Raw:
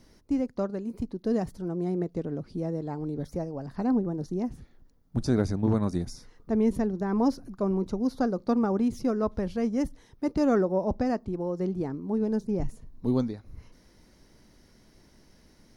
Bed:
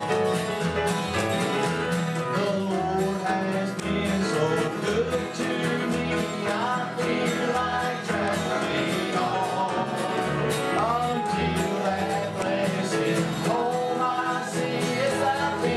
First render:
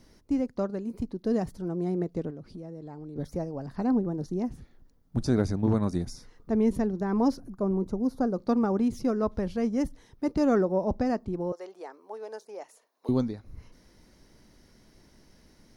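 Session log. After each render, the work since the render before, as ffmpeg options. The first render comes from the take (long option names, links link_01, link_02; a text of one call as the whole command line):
ffmpeg -i in.wav -filter_complex "[0:a]asettb=1/sr,asplit=3[link_01][link_02][link_03];[link_01]atrim=end=2.304[link_04];[link_02]atrim=start=2.3:end=3.16,asetpts=PTS-STARTPTS,afade=type=in:duration=0.004:curve=qsin,afade=type=out:start_time=0.856:duration=0.004:curve=qsin,acompressor=threshold=-39dB:ratio=4:attack=3.2:release=140:knee=1:detection=peak[link_05];[link_03]atrim=start=3.156[link_06];[link_04][link_05]acrossfade=duration=0.004:curve1=hsin:curve2=qsin[link_07];[link_07][link_06]acrossfade=duration=0.004:curve1=qsin:curve2=hsin,asettb=1/sr,asplit=3[link_08][link_09][link_10];[link_08]atrim=end=7.404[link_11];[link_09]atrim=start=7.4:end=8.34,asetpts=PTS-STARTPTS,afade=type=in:duration=0.004:curve=qsin,afade=type=out:start_time=0.936:duration=0.004:curve=qsin,equalizer=frequency=3300:width=0.63:gain=-10.5[link_12];[link_10]atrim=start=8.336[link_13];[link_11][link_12]acrossfade=duration=0.004:curve1=hsin:curve2=qsin[link_14];[link_14][link_13]acrossfade=duration=0.004:curve1=qsin:curve2=hsin,asettb=1/sr,asplit=3[link_15][link_16][link_17];[link_15]atrim=end=11.524[link_18];[link_16]atrim=start=11.52:end=13.09,asetpts=PTS-STARTPTS,afade=type=in:duration=0.004:curve=qsin,afade=type=out:start_time=1.566:duration=0.004:curve=qsin,highpass=frequency=540:width=0.5412,highpass=frequency=540:width=1.3066[link_19];[link_17]atrim=start=13.086[link_20];[link_18][link_19]acrossfade=duration=0.004:curve1=hsin:curve2=qsin[link_21];[link_21][link_20]acrossfade=duration=0.004:curve1=qsin:curve2=hsin" out.wav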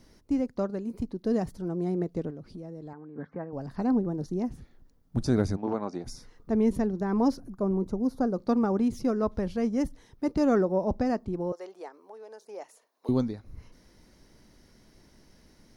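ffmpeg -i in.wav -filter_complex "[0:a]asettb=1/sr,asplit=3[link_01][link_02][link_03];[link_01]atrim=end=2.934[link_04];[link_02]atrim=start=2.93:end=3.53,asetpts=PTS-STARTPTS,afade=type=in:duration=0.004:curve=qsin,afade=type=out:start_time=0.596:duration=0.004:curve=qsin,highpass=220,equalizer=frequency=360:width_type=q:width=4:gain=-6,equalizer=frequency=590:width_type=q:width=4:gain=-7,equalizer=frequency=1100:width_type=q:width=4:gain=5,equalizer=frequency=1600:width_type=q:width=4:gain=9,lowpass=frequency=2200:width=0.5412,lowpass=frequency=2200:width=1.3066[link_05];[link_03]atrim=start=3.526[link_06];[link_04][link_05]acrossfade=duration=0.004:curve1=hsin:curve2=qsin[link_07];[link_07][link_06]acrossfade=duration=0.004:curve1=qsin:curve2=hsin,asplit=3[link_08][link_09][link_10];[link_08]afade=type=out:start_time=5.56:duration=0.02[link_11];[link_09]highpass=340,equalizer=frequency=790:width_type=q:width=4:gain=5,equalizer=frequency=1800:width_type=q:width=4:gain=-5,equalizer=frequency=3700:width_type=q:width=4:gain=-9,lowpass=frequency=5400:width=0.5412,lowpass=frequency=5400:width=1.3066,afade=type=in:start_time=5.56:duration=0.02,afade=type=out:start_time=6.04:duration=0.02[link_12];[link_10]afade=type=in:start_time=6.04:duration=0.02[link_13];[link_11][link_12][link_13]amix=inputs=3:normalize=0,asettb=1/sr,asplit=3[link_14][link_15][link_16];[link_14]atrim=end=11.884[link_17];[link_15]atrim=start=11.88:end=12.46,asetpts=PTS-STARTPTS,afade=type=in:duration=0.004:curve=qsin,afade=type=out:start_time=0.576:duration=0.004:curve=qsin,acompressor=threshold=-47dB:ratio=2:attack=3.2:release=140:knee=1:detection=peak[link_18];[link_16]atrim=start=12.456[link_19];[link_17][link_18]acrossfade=duration=0.004:curve1=hsin:curve2=qsin[link_20];[link_20][link_19]acrossfade=duration=0.004:curve1=qsin:curve2=hsin" out.wav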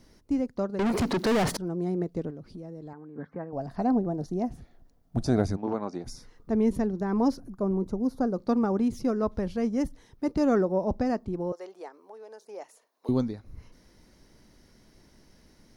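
ffmpeg -i in.wav -filter_complex "[0:a]asettb=1/sr,asplit=3[link_01][link_02][link_03];[link_01]atrim=end=0.794[link_04];[link_02]atrim=start=0.79:end=1.57,asetpts=PTS-STARTPTS,afade=type=in:duration=0.004:curve=qsin,afade=type=out:start_time=0.776:duration=0.004:curve=qsin,asplit=2[link_05][link_06];[link_06]highpass=frequency=720:poles=1,volume=40dB,asoftclip=type=tanh:threshold=-18dB[link_07];[link_05][link_07]amix=inputs=2:normalize=0,lowpass=frequency=4000:poles=1,volume=-6dB[link_08];[link_03]atrim=start=1.566[link_09];[link_04][link_08]acrossfade=duration=0.004:curve1=hsin:curve2=qsin[link_10];[link_10][link_09]acrossfade=duration=0.004:curve1=qsin:curve2=hsin,asettb=1/sr,asplit=3[link_11][link_12][link_13];[link_11]atrim=end=3.524[link_14];[link_12]atrim=start=3.52:end=5.46,asetpts=PTS-STARTPTS,afade=type=in:duration=0.004:curve=qsin,afade=type=out:start_time=1.936:duration=0.004:curve=qsin,equalizer=frequency=690:width=4.6:gain=11[link_15];[link_13]atrim=start=5.456[link_16];[link_14][link_15]acrossfade=duration=0.004:curve1=hsin:curve2=qsin[link_17];[link_17][link_16]acrossfade=duration=0.004:curve1=qsin:curve2=hsin" out.wav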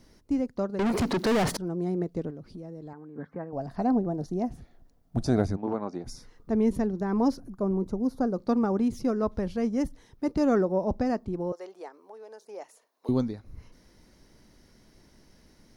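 ffmpeg -i in.wav -filter_complex "[0:a]asettb=1/sr,asplit=3[link_01][link_02][link_03];[link_01]atrim=end=5.454[link_04];[link_02]atrim=start=5.45:end=6.09,asetpts=PTS-STARTPTS,afade=type=in:duration=0.004:curve=qsin,afade=type=out:start_time=0.636:duration=0.004:curve=qsin,equalizer=frequency=8000:width=0.31:gain=-5[link_05];[link_03]atrim=start=6.086[link_06];[link_04][link_05]acrossfade=duration=0.004:curve1=hsin:curve2=qsin[link_07];[link_07][link_06]acrossfade=duration=0.004:curve1=qsin:curve2=hsin" out.wav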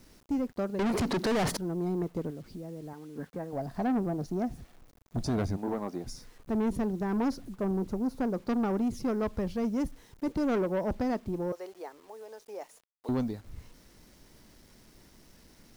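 ffmpeg -i in.wav -af "asoftclip=type=tanh:threshold=-24dB,acrusher=bits=9:mix=0:aa=0.000001" out.wav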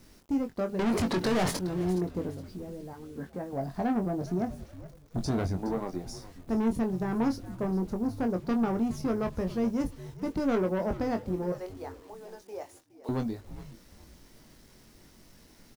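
ffmpeg -i in.wav -filter_complex "[0:a]asplit=2[link_01][link_02];[link_02]adelay=22,volume=-6.5dB[link_03];[link_01][link_03]amix=inputs=2:normalize=0,asplit=4[link_04][link_05][link_06][link_07];[link_05]adelay=417,afreqshift=-86,volume=-15.5dB[link_08];[link_06]adelay=834,afreqshift=-172,volume=-24.9dB[link_09];[link_07]adelay=1251,afreqshift=-258,volume=-34.2dB[link_10];[link_04][link_08][link_09][link_10]amix=inputs=4:normalize=0" out.wav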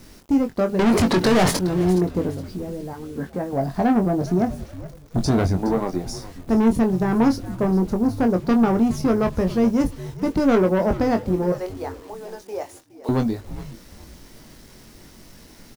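ffmpeg -i in.wav -af "volume=10dB" out.wav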